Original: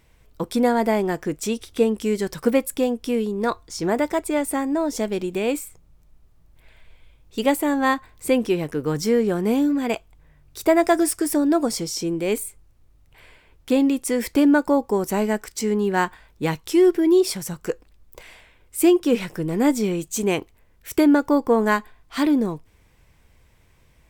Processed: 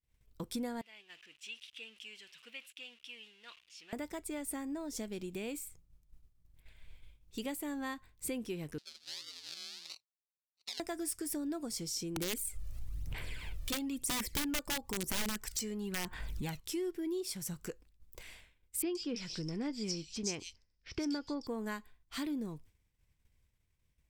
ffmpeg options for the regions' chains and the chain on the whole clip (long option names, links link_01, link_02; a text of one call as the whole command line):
ffmpeg -i in.wav -filter_complex "[0:a]asettb=1/sr,asplit=3[link_01][link_02][link_03];[link_01]atrim=end=0.814[link_04];[link_02]atrim=start=0.81:end=3.93,asetpts=PTS-STARTPTS,afade=type=in:duration=0.004:curve=qsin,afade=type=out:start_time=3.116:duration=0.004:curve=qsin,aeval=exprs='val(0)+0.5*0.0266*sgn(val(0))':channel_layout=same,bandpass=frequency=2800:width_type=q:width=5.3,acompressor=mode=upward:threshold=-44dB:ratio=2.5:attack=3.2:release=140:knee=2.83:detection=peak[link_05];[link_03]atrim=start=3.926[link_06];[link_04][link_05]acrossfade=duration=0.004:curve1=hsin:curve2=qsin[link_07];[link_07][link_06]acrossfade=duration=0.004:curve1=qsin:curve2=hsin,asettb=1/sr,asplit=3[link_08][link_09][link_10];[link_08]atrim=end=8.784[link_11];[link_09]atrim=start=8.78:end=10.8,asetpts=PTS-STARTPTS,afade=type=in:duration=0.004:curve=qsin,afade=type=out:start_time=2.016:duration=0.004:curve=qsin,acrusher=samples=37:mix=1:aa=0.000001:lfo=1:lforange=22.2:lforate=1.5,aeval=exprs='val(0)*sin(2*PI*83*n/s)':channel_layout=same,bandpass=frequency=4400:width_type=q:width=3.4[link_12];[link_10]atrim=start=10.796[link_13];[link_11][link_12]acrossfade=duration=0.004:curve1=hsin:curve2=qsin[link_14];[link_14][link_13]acrossfade=duration=0.004:curve1=qsin:curve2=hsin,asettb=1/sr,asplit=3[link_15][link_16][link_17];[link_15]atrim=end=12.164[link_18];[link_16]atrim=start=12.16:end=16.6,asetpts=PTS-STARTPTS,afade=type=in:duration=0.004:curve=qsin,afade=type=out:start_time=4.436:duration=0.004:curve=qsin,acompressor=mode=upward:threshold=-21dB:ratio=2.5:attack=3.2:release=140:knee=2.83:detection=peak,aphaser=in_gain=1:out_gain=1:delay=1.7:decay=0.55:speed=1:type=sinusoidal,aeval=exprs='(mod(3.98*val(0)+1,2)-1)/3.98':channel_layout=same[link_19];[link_17]atrim=start=16.596[link_20];[link_18][link_19]acrossfade=duration=0.004:curve1=hsin:curve2=qsin[link_21];[link_21][link_20]acrossfade=duration=0.004:curve1=qsin:curve2=hsin,asettb=1/sr,asplit=3[link_22][link_23][link_24];[link_22]atrim=end=18.824[link_25];[link_23]atrim=start=18.82:end=21.47,asetpts=PTS-STARTPTS,afade=type=in:duration=0.004:curve=qsin,afade=type=out:start_time=2.646:duration=0.004:curve=qsin,lowpass=frequency=5200:width_type=q:width=10,acrossover=split=3400[link_26][link_27];[link_27]adelay=130[link_28];[link_26][link_28]amix=inputs=2:normalize=0,atrim=end_sample=116865[link_29];[link_24]atrim=start=21.466[link_30];[link_25][link_29]acrossfade=duration=0.004:curve1=hsin:curve2=qsin[link_31];[link_31][link_30]acrossfade=duration=0.004:curve1=qsin:curve2=hsin,acompressor=threshold=-35dB:ratio=2,agate=range=-33dB:threshold=-45dB:ratio=3:detection=peak,equalizer=frequency=740:width=0.41:gain=-9.5,volume=-3dB" out.wav